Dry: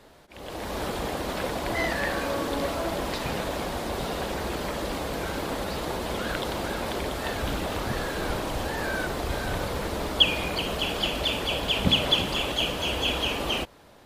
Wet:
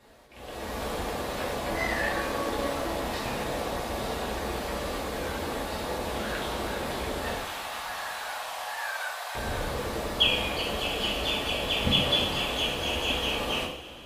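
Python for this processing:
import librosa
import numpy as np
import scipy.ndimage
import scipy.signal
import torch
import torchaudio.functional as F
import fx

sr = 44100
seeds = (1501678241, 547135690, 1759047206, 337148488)

y = fx.steep_highpass(x, sr, hz=680.0, slope=36, at=(7.36, 9.35))
y = fx.rev_double_slope(y, sr, seeds[0], early_s=0.55, late_s=4.6, knee_db=-20, drr_db=-5.5)
y = y * librosa.db_to_amplitude(-7.5)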